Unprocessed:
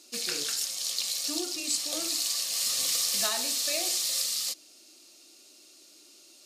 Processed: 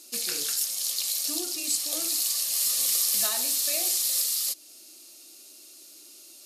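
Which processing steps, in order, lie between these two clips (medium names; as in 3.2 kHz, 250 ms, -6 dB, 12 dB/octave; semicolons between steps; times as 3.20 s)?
peaking EQ 12 kHz +13.5 dB 0.75 oct; in parallel at -1.5 dB: compression, threshold -34 dBFS, peak gain reduction 14.5 dB; 3.57–4.20 s: on the sum: small samples zeroed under -43.5 dBFS; trim -4 dB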